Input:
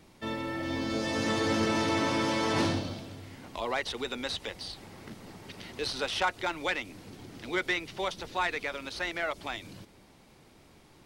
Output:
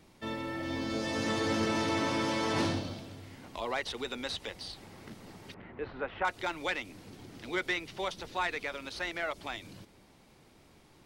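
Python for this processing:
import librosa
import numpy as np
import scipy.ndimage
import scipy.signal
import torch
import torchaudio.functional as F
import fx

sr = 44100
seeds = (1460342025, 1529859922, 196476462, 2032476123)

y = fx.lowpass(x, sr, hz=2000.0, slope=24, at=(5.54, 6.25))
y = y * librosa.db_to_amplitude(-2.5)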